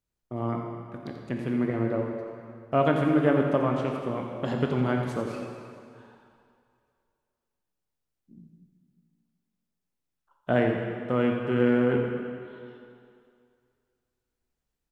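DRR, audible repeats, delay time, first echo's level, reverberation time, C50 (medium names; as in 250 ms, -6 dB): 1.0 dB, 1, 87 ms, -10.5 dB, 2.3 s, 2.5 dB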